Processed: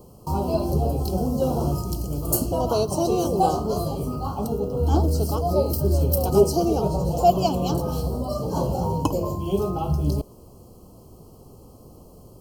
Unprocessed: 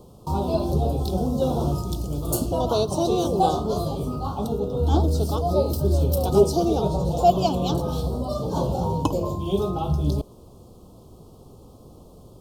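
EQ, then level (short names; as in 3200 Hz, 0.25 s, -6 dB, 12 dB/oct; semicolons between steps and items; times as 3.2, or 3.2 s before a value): Butterworth band-stop 3600 Hz, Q 4.3; high shelf 12000 Hz +10.5 dB; 0.0 dB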